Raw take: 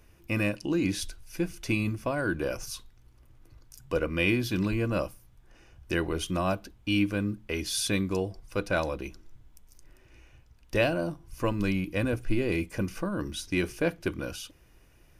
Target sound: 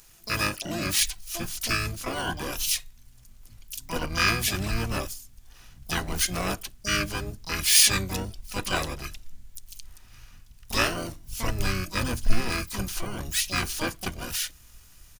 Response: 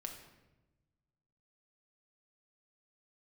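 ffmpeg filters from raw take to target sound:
-filter_complex "[0:a]asubboost=boost=3:cutoff=130,crystalizer=i=8.5:c=0,asplit=4[s0][s1][s2][s3];[s1]asetrate=22050,aresample=44100,atempo=2,volume=0.708[s4];[s2]asetrate=29433,aresample=44100,atempo=1.49831,volume=0.708[s5];[s3]asetrate=88200,aresample=44100,atempo=0.5,volume=0.708[s6];[s0][s4][s5][s6]amix=inputs=4:normalize=0,volume=0.376"

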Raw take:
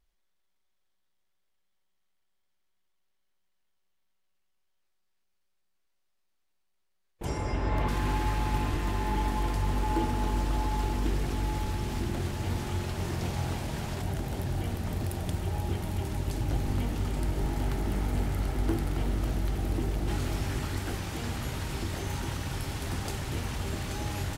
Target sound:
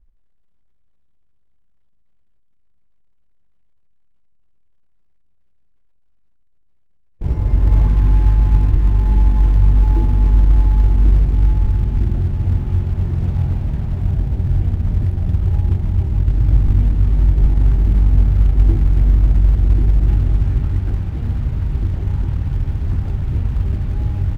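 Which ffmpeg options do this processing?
-filter_complex "[0:a]aemphasis=mode=reproduction:type=riaa,asplit=2[s0][s1];[s1]acrusher=bits=4:mode=log:mix=0:aa=0.000001,volume=0.596[s2];[s0][s2]amix=inputs=2:normalize=0,bass=f=250:g=5,treble=f=4000:g=-7,volume=0.422"

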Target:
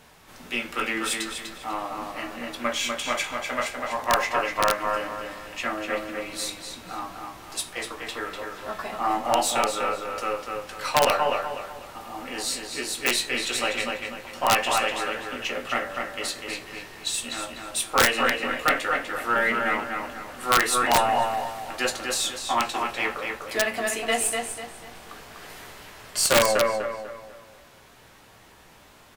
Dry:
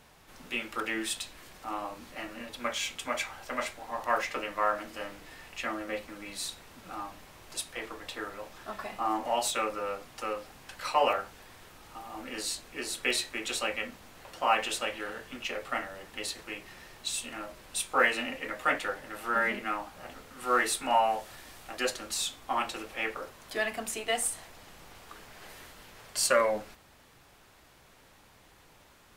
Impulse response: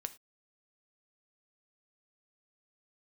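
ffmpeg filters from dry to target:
-filter_complex "[0:a]aeval=exprs='0.299*(cos(1*acos(clip(val(0)/0.299,-1,1)))-cos(1*PI/2))+0.0473*(cos(2*acos(clip(val(0)/0.299,-1,1)))-cos(2*PI/2))+0.00422*(cos(6*acos(clip(val(0)/0.299,-1,1)))-cos(6*PI/2))':c=same,asplit=2[s0][s1];[s1]adelay=17,volume=0.335[s2];[s0][s2]amix=inputs=2:normalize=0,asplit=2[s3][s4];[s4]adelay=247,lowpass=f=4900:p=1,volume=0.631,asplit=2[s5][s6];[s6]adelay=247,lowpass=f=4900:p=1,volume=0.37,asplit=2[s7][s8];[s8]adelay=247,lowpass=f=4900:p=1,volume=0.37,asplit=2[s9][s10];[s10]adelay=247,lowpass=f=4900:p=1,volume=0.37,asplit=2[s11][s12];[s12]adelay=247,lowpass=f=4900:p=1,volume=0.37[s13];[s3][s5][s7][s9][s11][s13]amix=inputs=6:normalize=0,asplit=2[s14][s15];[1:a]atrim=start_sample=2205,lowshelf=f=69:g=-8[s16];[s15][s16]afir=irnorm=-1:irlink=0,volume=2.11[s17];[s14][s17]amix=inputs=2:normalize=0,aeval=exprs='(mod(2*val(0)+1,2)-1)/2':c=same,volume=0.668"

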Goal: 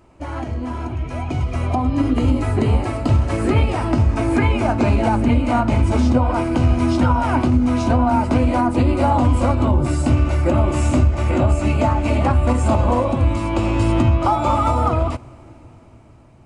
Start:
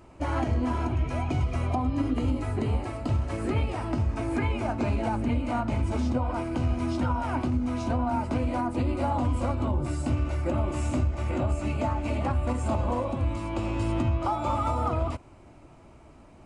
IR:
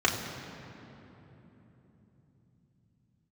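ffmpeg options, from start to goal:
-filter_complex "[0:a]dynaudnorm=f=370:g=9:m=3.55,asplit=2[s0][s1];[1:a]atrim=start_sample=2205,adelay=22[s2];[s1][s2]afir=irnorm=-1:irlink=0,volume=0.0178[s3];[s0][s3]amix=inputs=2:normalize=0"

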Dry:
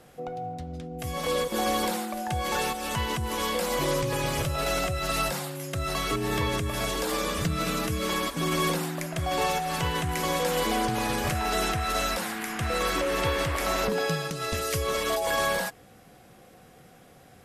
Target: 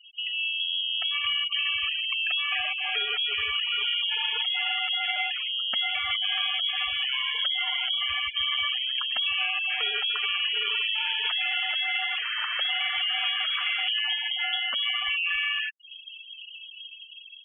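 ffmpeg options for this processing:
-af "acompressor=threshold=0.01:ratio=5,acrusher=bits=3:mode=log:mix=0:aa=0.000001,lowpass=f=2900:t=q:w=0.5098,lowpass=f=2900:t=q:w=0.6013,lowpass=f=2900:t=q:w=0.9,lowpass=f=2900:t=q:w=2.563,afreqshift=-3400,afftfilt=real='re*gte(hypot(re,im),0.01)':imag='im*gte(hypot(re,im),0.01)':win_size=1024:overlap=0.75,dynaudnorm=f=230:g=3:m=2,volume=2.51"

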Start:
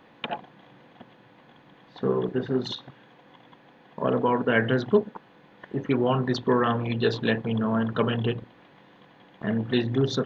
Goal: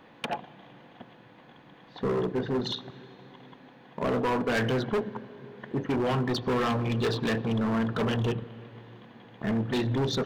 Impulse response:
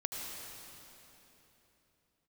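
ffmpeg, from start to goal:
-filter_complex "[0:a]asplit=2[s0][s1];[1:a]atrim=start_sample=2205,lowshelf=f=250:g=8[s2];[s1][s2]afir=irnorm=-1:irlink=0,volume=0.0841[s3];[s0][s3]amix=inputs=2:normalize=0,volume=15,asoftclip=hard,volume=0.0668"

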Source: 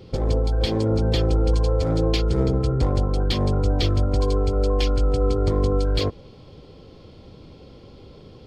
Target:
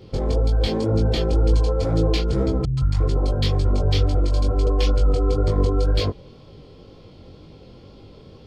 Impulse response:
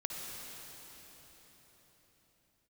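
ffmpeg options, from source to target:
-filter_complex "[0:a]flanger=delay=18.5:depth=4.9:speed=2,asettb=1/sr,asplit=3[s0][s1][s2];[s0]atrim=end=2.654[s3];[s1]atrim=start=2.65:end=4.67,asetpts=PTS-STARTPTS,afade=t=in:d=0.004:c=qsin,afade=t=out:st=2.016:d=0.004:c=qsin,acrossover=split=200|970[s4][s5][s6];[s6]adelay=120[s7];[s5]adelay=350[s8];[s4][s8][s7]amix=inputs=3:normalize=0,atrim=end_sample=89082[s9];[s2]atrim=start=4.666[s10];[s3][s9]acrossfade=d=0.004:c1=hsin:c2=qsin[s11];[s11][s10]acrossfade=d=0.004:c1=qsin:c2=hsin,volume=1.41"

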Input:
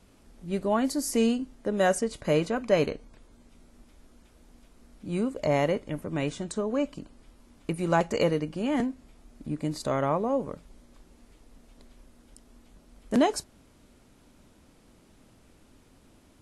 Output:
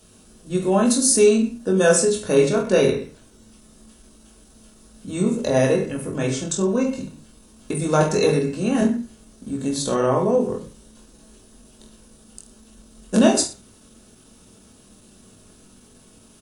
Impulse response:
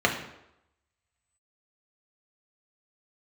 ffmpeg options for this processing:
-filter_complex "[0:a]aemphasis=mode=production:type=75fm,aecho=1:1:20|42|66.2|92.82|122.1:0.631|0.398|0.251|0.158|0.1,asplit=2[s0][s1];[1:a]atrim=start_sample=2205,afade=t=out:st=0.22:d=0.01,atrim=end_sample=10143,lowshelf=f=300:g=8[s2];[s1][s2]afir=irnorm=-1:irlink=0,volume=0.15[s3];[s0][s3]amix=inputs=2:normalize=0,asetrate=40440,aresample=44100,atempo=1.09051"

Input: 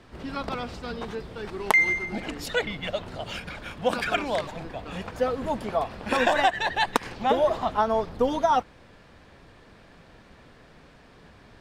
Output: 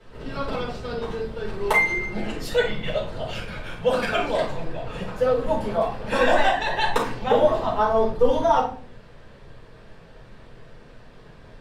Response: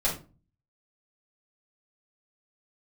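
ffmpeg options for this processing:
-filter_complex "[1:a]atrim=start_sample=2205,asetrate=33957,aresample=44100[s0];[0:a][s0]afir=irnorm=-1:irlink=0,volume=0.355"

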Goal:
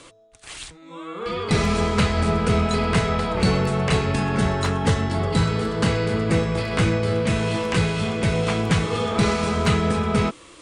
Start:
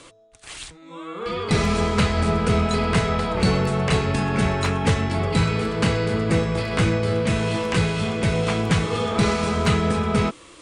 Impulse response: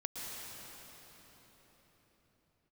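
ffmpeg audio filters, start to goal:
-filter_complex "[0:a]asettb=1/sr,asplit=3[s0][s1][s2];[s0]atrim=end=4.354[s3];[s1]atrim=start=4.35:end=5.87,asetpts=PTS-STARTPTS,afade=t=in:d=0.004:c=qsin,afade=t=out:st=1.516:d=0.004:c=qsin,equalizer=f=2400:w=5.5:g=-8.5[s4];[s2]atrim=start=5.866[s5];[s3][s4]acrossfade=d=0.004:c1=hsin:c2=qsin[s6];[s6][s5]acrossfade=d=0.004:c1=qsin:c2=hsin"

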